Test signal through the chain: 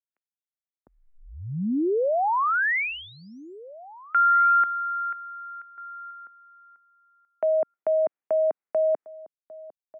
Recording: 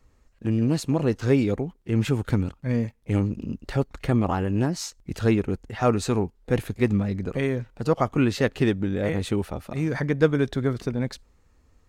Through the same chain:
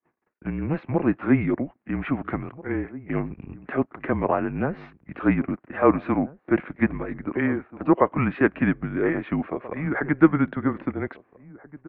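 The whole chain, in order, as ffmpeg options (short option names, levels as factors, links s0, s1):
-filter_complex "[0:a]agate=range=0.0447:threshold=0.00158:ratio=16:detection=peak,asplit=2[s0][s1];[s1]adelay=1633,volume=0.126,highshelf=f=4000:g=-36.7[s2];[s0][s2]amix=inputs=2:normalize=0,highpass=f=360:t=q:w=0.5412,highpass=f=360:t=q:w=1.307,lowpass=f=2400:t=q:w=0.5176,lowpass=f=2400:t=q:w=0.7071,lowpass=f=2400:t=q:w=1.932,afreqshift=-150,volume=1.88"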